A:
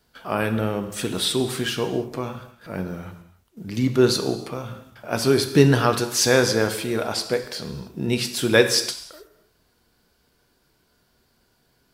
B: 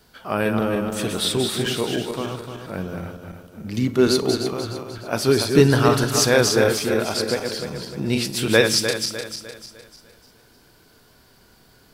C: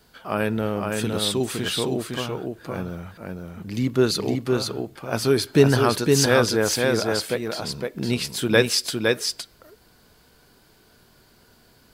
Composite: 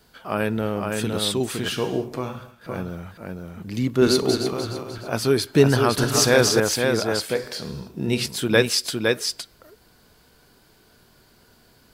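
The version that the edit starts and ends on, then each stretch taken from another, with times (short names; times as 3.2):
C
1.72–2.69 from A
4.02–5.09 from B
5.98–6.6 from B
7.35–8.26 from A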